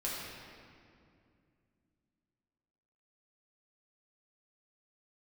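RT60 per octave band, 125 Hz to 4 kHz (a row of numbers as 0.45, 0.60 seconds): 3.4, 3.5, 2.6, 2.2, 2.0, 1.6 seconds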